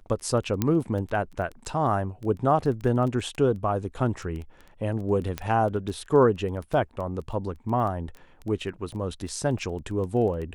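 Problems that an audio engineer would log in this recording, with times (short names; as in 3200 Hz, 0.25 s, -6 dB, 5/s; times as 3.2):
crackle 12/s -32 dBFS
0.62 pop -10 dBFS
5.38 pop -14 dBFS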